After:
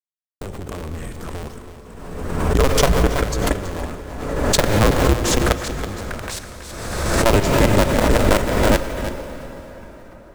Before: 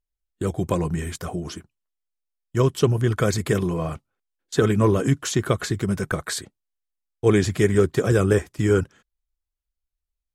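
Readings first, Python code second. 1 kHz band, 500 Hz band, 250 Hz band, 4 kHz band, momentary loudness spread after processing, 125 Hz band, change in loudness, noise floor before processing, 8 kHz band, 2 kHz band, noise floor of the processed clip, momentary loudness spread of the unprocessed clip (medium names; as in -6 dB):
+9.0 dB, +2.0 dB, +1.5 dB, +8.5 dB, 18 LU, +1.0 dB, +3.5 dB, -84 dBFS, +7.0 dB, +6.5 dB, -42 dBFS, 12 LU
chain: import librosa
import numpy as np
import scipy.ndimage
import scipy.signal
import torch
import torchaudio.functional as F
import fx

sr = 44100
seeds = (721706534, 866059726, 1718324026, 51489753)

p1 = fx.cycle_switch(x, sr, every=2, mode='inverted')
p2 = fx.low_shelf(p1, sr, hz=130.0, db=4.5)
p3 = fx.level_steps(p2, sr, step_db=16)
p4 = np.sign(p3) * np.maximum(np.abs(p3) - 10.0 ** (-48.0 / 20.0), 0.0)
p5 = p4 + fx.echo_single(p4, sr, ms=326, db=-11.0, dry=0)
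p6 = fx.rev_plate(p5, sr, seeds[0], rt60_s=4.8, hf_ratio=0.7, predelay_ms=0, drr_db=7.5)
p7 = fx.pre_swell(p6, sr, db_per_s=37.0)
y = p7 * librosa.db_to_amplitude(3.0)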